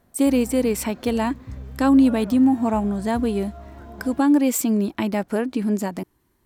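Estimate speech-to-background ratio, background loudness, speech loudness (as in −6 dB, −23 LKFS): 18.5 dB, −39.5 LKFS, −21.0 LKFS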